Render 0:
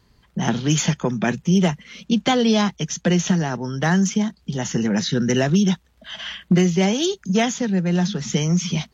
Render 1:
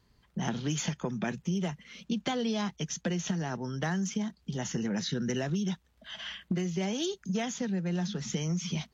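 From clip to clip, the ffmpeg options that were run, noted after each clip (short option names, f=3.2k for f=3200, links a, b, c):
-af "acompressor=threshold=-19dB:ratio=6,volume=-8.5dB"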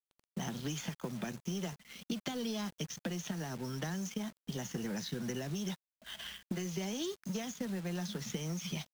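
-filter_complex "[0:a]acrossover=split=100|380|4100[a][b][c][d];[a]acompressor=threshold=-59dB:ratio=4[e];[b]acompressor=threshold=-41dB:ratio=4[f];[c]acompressor=threshold=-46dB:ratio=4[g];[d]acompressor=threshold=-49dB:ratio=4[h];[e][f][g][h]amix=inputs=4:normalize=0,acrusher=bits=8:mix=0:aa=0.000001,aeval=exprs='sgn(val(0))*max(abs(val(0))-0.00251,0)':c=same,volume=3dB"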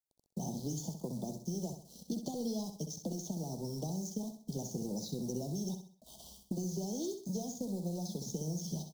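-af "asuperstop=centerf=1900:order=8:qfactor=0.54,aecho=1:1:65|130|195|260:0.398|0.151|0.0575|0.0218"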